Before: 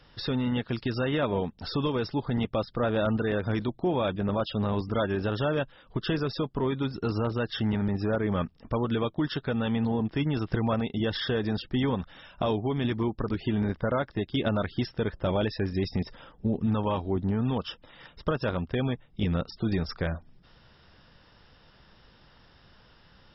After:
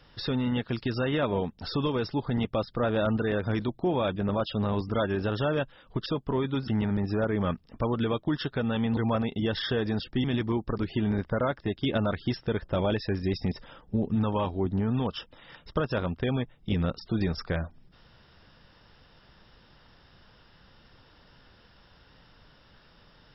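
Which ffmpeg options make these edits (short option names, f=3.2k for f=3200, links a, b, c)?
-filter_complex "[0:a]asplit=5[a][b][c][d][e];[a]atrim=end=6.062[f];[b]atrim=start=6.338:end=6.962[g];[c]atrim=start=7.588:end=9.882[h];[d]atrim=start=10.548:end=11.822[i];[e]atrim=start=12.748[j];[f][g]acrossfade=d=0.004:c1=hsin:c2=hsin[k];[k][h]acrossfade=d=0.004:c1=hsin:c2=hsin[l];[l][i]acrossfade=d=0.004:c1=hsin:c2=hsin[m];[m][j]acrossfade=d=0.004:c1=hsin:c2=hsin"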